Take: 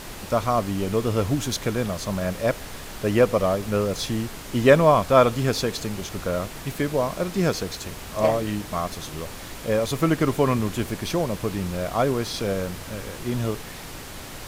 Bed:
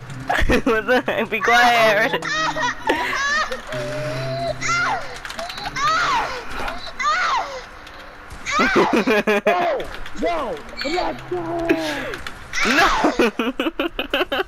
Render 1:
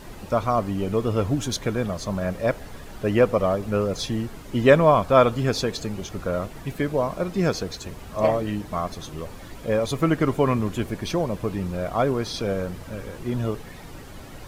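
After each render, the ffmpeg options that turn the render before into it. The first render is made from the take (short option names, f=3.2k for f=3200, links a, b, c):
-af "afftdn=nr=10:nf=-38"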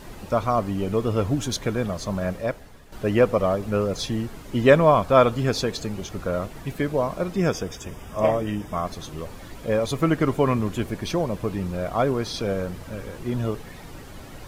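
-filter_complex "[0:a]asettb=1/sr,asplit=3[a][b][c];[a]atrim=end=7.364[d];[b]atrim=start=7.36:end=8.85,asetpts=PTS-STARTPTS,afade=t=in:d=0.004:c=qsin,afade=t=out:st=1.486:d=0.004:c=qsin,asuperstop=centerf=4200:order=20:qfactor=4.9[e];[c]atrim=start=8.846[f];[d][e]acrossfade=d=0.004:c1=hsin:c2=qsin[g];[g][f]acrossfade=d=0.004:c1=qsin:c2=hsin,asplit=2[h][i];[h]atrim=end=2.92,asetpts=PTS-STARTPTS,afade=t=out:st=2.29:d=0.63:c=qua:silence=0.316228[j];[i]atrim=start=2.92,asetpts=PTS-STARTPTS,afade=t=in:d=0.004:c=hsin:silence=0.316228[k];[j][k]concat=n=2:v=0:a=1"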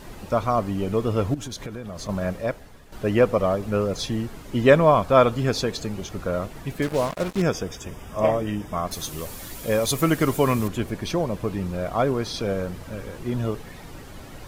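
-filter_complex "[0:a]asettb=1/sr,asplit=3[a][b][c];[a]atrim=end=1.344[d];[b]atrim=start=1.34:end=2.09,asetpts=PTS-STARTPTS,afade=t=in:d=0.004:c=qsin,afade=t=out:st=0.746:d=0.004:c=qsin,acompressor=threshold=-30dB:ratio=6:attack=3.2:release=140:knee=1:detection=peak[e];[c]atrim=start=2.086[f];[d][e]acrossfade=d=0.004:c1=hsin:c2=qsin[g];[g][f]acrossfade=d=0.004:c1=qsin:c2=hsin,asettb=1/sr,asplit=3[h][i][j];[h]atrim=end=6.824[k];[i]atrim=start=6.82:end=7.42,asetpts=PTS-STARTPTS,afade=t=in:d=0.004:c=qsin,afade=t=out:st=0.596:d=0.004:c=qsin,acrusher=bits=4:mix=0:aa=0.5[l];[j]atrim=start=7.416[m];[k][l]acrossfade=d=0.004:c1=hsin:c2=qsin[n];[n][m]acrossfade=d=0.004:c1=qsin:c2=hsin,asettb=1/sr,asplit=3[o][p][q];[o]atrim=end=8.914[r];[p]atrim=start=8.91:end=10.68,asetpts=PTS-STARTPTS,afade=t=in:d=0.004:c=qsin,afade=t=out:st=1.766:d=0.004:c=qsin,aemphasis=mode=production:type=75kf[s];[q]atrim=start=10.676[t];[r][s]acrossfade=d=0.004:c1=hsin:c2=qsin[u];[u][t]acrossfade=d=0.004:c1=qsin:c2=hsin"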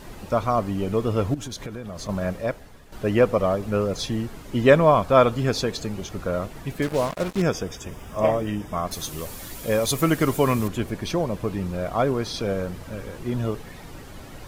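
-filter_complex "[0:a]asettb=1/sr,asplit=3[a][b][c];[a]atrim=end=7.914[d];[b]atrim=start=7.91:end=8.5,asetpts=PTS-STARTPTS,afade=t=in:d=0.004:c=qsin,afade=t=out:st=0.586:d=0.004:c=qsin,acrusher=bits=8:mix=0:aa=0.5[e];[c]atrim=start=8.496[f];[d][e]acrossfade=d=0.004:c1=hsin:c2=qsin[g];[g][f]acrossfade=d=0.004:c1=qsin:c2=hsin"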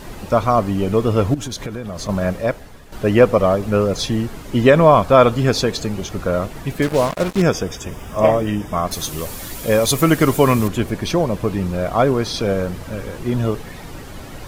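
-af "alimiter=level_in=6.5dB:limit=-1dB:release=50:level=0:latency=1"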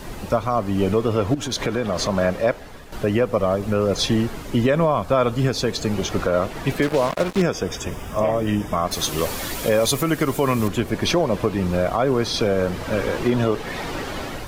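-filter_complex "[0:a]acrossover=split=260|5700[a][b][c];[b]dynaudnorm=f=200:g=5:m=11.5dB[d];[a][d][c]amix=inputs=3:normalize=0,alimiter=limit=-9dB:level=0:latency=1:release=278"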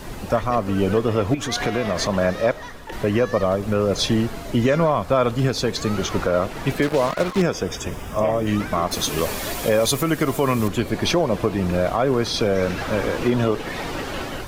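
-filter_complex "[1:a]volume=-17dB[a];[0:a][a]amix=inputs=2:normalize=0"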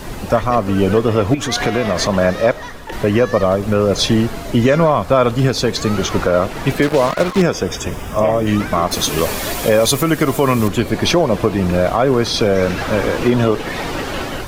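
-af "volume=5.5dB"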